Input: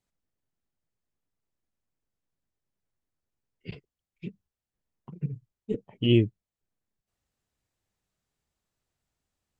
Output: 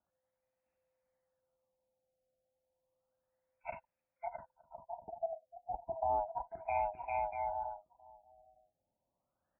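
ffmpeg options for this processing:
-filter_complex "[0:a]afftfilt=real='real(if(lt(b,1008),b+24*(1-2*mod(floor(b/24),2)),b),0)':imag='imag(if(lt(b,1008),b+24*(1-2*mod(floor(b/24),2)),b),0)':win_size=2048:overlap=0.75,lowshelf=f=95:g=5,asplit=2[s0][s1];[s1]aecho=0:1:660|1056|1294|1436|1522:0.631|0.398|0.251|0.158|0.1[s2];[s0][s2]amix=inputs=2:normalize=0,acrossover=split=2500[s3][s4];[s4]acompressor=threshold=0.00282:ratio=4:attack=1:release=60[s5];[s3][s5]amix=inputs=2:normalize=0,asoftclip=type=hard:threshold=0.211,highpass=f=53:p=1,equalizer=f=560:w=1.9:g=-9.5,acrossover=split=570|2300[s6][s7][s8];[s6]acompressor=threshold=0.0126:ratio=4[s9];[s7]acompressor=threshold=0.01:ratio=4[s10];[s8]acompressor=threshold=0.002:ratio=4[s11];[s9][s10][s11]amix=inputs=3:normalize=0,asplit=2[s12][s13];[s13]aecho=0:1:912:0.0668[s14];[s12][s14]amix=inputs=2:normalize=0,afftfilt=real='re*lt(b*sr/1024,800*pow(2800/800,0.5+0.5*sin(2*PI*0.32*pts/sr)))':imag='im*lt(b*sr/1024,800*pow(2800/800,0.5+0.5*sin(2*PI*0.32*pts/sr)))':win_size=1024:overlap=0.75,volume=1.26"

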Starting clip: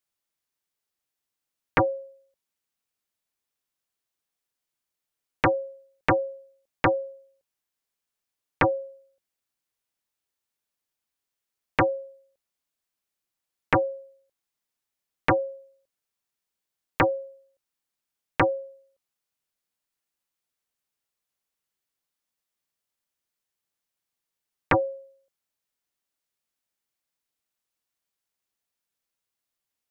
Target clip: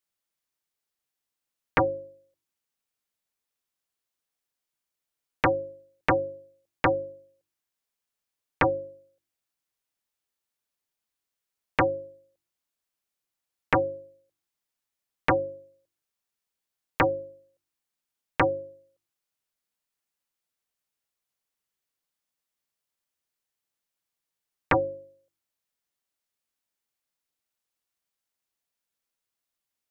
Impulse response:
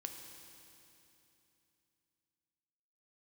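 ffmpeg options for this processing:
-af "bandreject=f=49.56:t=h:w=4,bandreject=f=99.12:t=h:w=4,bandreject=f=148.68:t=h:w=4,bandreject=f=198.24:t=h:w=4,bandreject=f=247.8:t=h:w=4,bandreject=f=297.36:t=h:w=4,bandreject=f=346.92:t=h:w=4,bandreject=f=396.48:t=h:w=4,volume=0.891"

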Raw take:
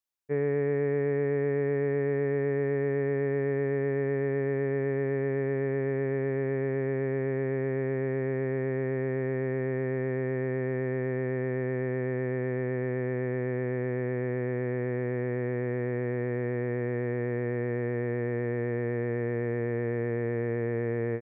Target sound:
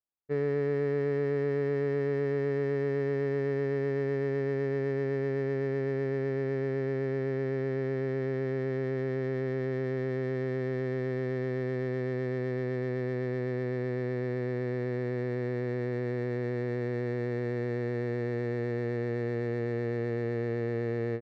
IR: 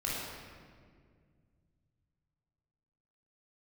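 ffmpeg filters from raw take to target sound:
-af "adynamicsmooth=sensitivity=6:basefreq=1300,volume=0.841"

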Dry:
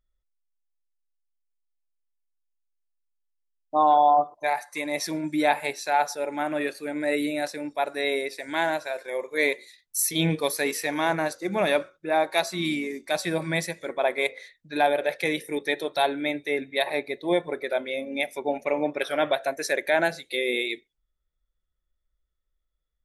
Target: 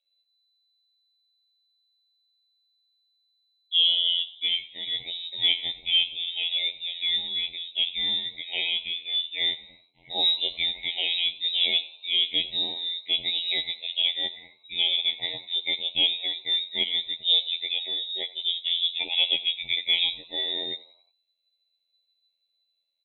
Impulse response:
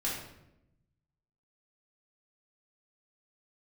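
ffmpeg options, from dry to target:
-filter_complex "[0:a]asplit=2[s0][s1];[s1]asoftclip=type=tanh:threshold=0.0562,volume=0.562[s2];[s0][s2]amix=inputs=2:normalize=0,afftfilt=real='hypot(re,im)*cos(PI*b)':imag='0':win_size=2048:overlap=0.75,lowpass=f=3400:t=q:w=0.5098,lowpass=f=3400:t=q:w=0.6013,lowpass=f=3400:t=q:w=0.9,lowpass=f=3400:t=q:w=2.563,afreqshift=-4000,asuperstop=centerf=1400:order=12:qfactor=1.2,asplit=5[s3][s4][s5][s6][s7];[s4]adelay=90,afreqshift=78,volume=0.1[s8];[s5]adelay=180,afreqshift=156,volume=0.049[s9];[s6]adelay=270,afreqshift=234,volume=0.024[s10];[s7]adelay=360,afreqshift=312,volume=0.0117[s11];[s3][s8][s9][s10][s11]amix=inputs=5:normalize=0,volume=1.12"

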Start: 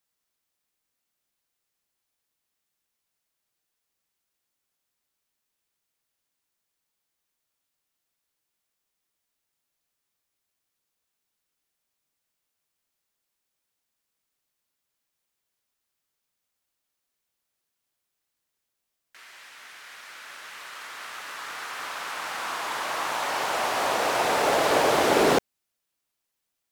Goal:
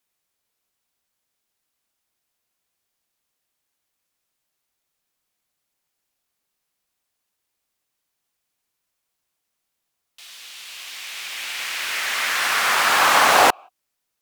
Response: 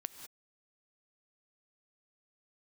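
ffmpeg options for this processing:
-filter_complex "[0:a]asetrate=82908,aresample=44100,asplit=2[s0][s1];[s1]asplit=3[s2][s3][s4];[s2]bandpass=f=730:t=q:w=8,volume=1[s5];[s3]bandpass=f=1090:t=q:w=8,volume=0.501[s6];[s4]bandpass=f=2440:t=q:w=8,volume=0.355[s7];[s5][s6][s7]amix=inputs=3:normalize=0[s8];[1:a]atrim=start_sample=2205,afade=t=out:st=0.23:d=0.01,atrim=end_sample=10584[s9];[s8][s9]afir=irnorm=-1:irlink=0,volume=0.398[s10];[s0][s10]amix=inputs=2:normalize=0,volume=2"

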